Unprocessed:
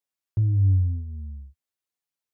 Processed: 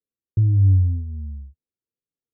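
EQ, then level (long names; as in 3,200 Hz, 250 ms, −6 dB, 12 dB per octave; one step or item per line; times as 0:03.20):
elliptic low-pass filter 500 Hz
+5.0 dB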